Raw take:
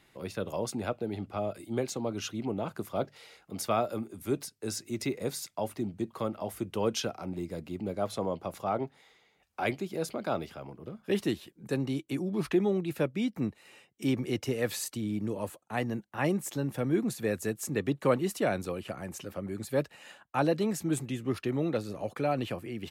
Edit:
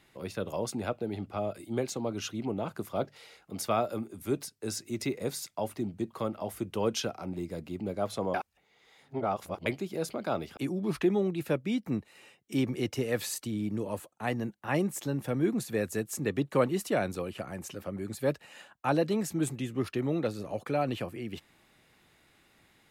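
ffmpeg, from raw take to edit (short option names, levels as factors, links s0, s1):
-filter_complex "[0:a]asplit=4[s0][s1][s2][s3];[s0]atrim=end=8.342[s4];[s1]atrim=start=8.338:end=9.662,asetpts=PTS-STARTPTS,areverse[s5];[s2]atrim=start=9.658:end=10.572[s6];[s3]atrim=start=12.068[s7];[s4][s5]acrossfade=d=0.004:c1=hsin:c2=hsin[s8];[s8][s6]acrossfade=d=0.004:c1=hsin:c2=hsin[s9];[s9][s7]acrossfade=d=0.004:c1=hsin:c2=hsin"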